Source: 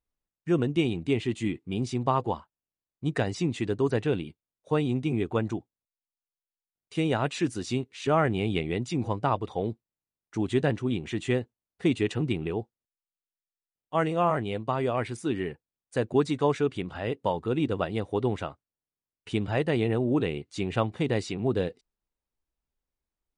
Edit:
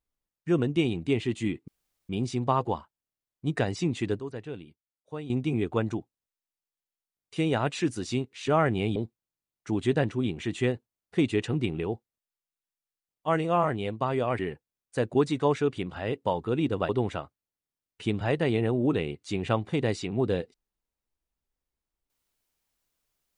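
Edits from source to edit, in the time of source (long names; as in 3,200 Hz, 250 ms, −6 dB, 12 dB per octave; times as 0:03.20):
0:01.68: splice in room tone 0.41 s
0:03.79–0:04.89: clip gain −11.5 dB
0:08.55–0:09.63: remove
0:15.06–0:15.38: remove
0:17.88–0:18.16: remove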